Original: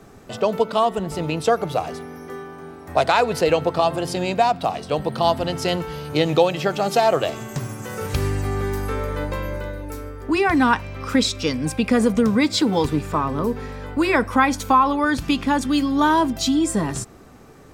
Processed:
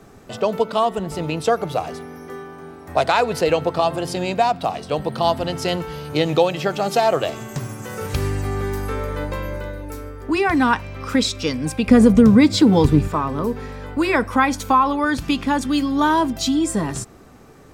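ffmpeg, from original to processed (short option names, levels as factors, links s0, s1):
-filter_complex "[0:a]asettb=1/sr,asplit=3[s0][s1][s2];[s0]atrim=end=11.874[s3];[s1]atrim=start=11.87:end=13.08,asetpts=PTS-STARTPTS,afade=t=in:d=0.004:c=qsin,afade=t=out:st=1.206:d=0.004:c=qsin,lowshelf=f=330:g=11[s4];[s2]atrim=start=13.076[s5];[s3][s4]acrossfade=d=0.004:c1=hsin:c2=qsin[s6];[s6][s5]acrossfade=d=0.004:c1=qsin:c2=hsin"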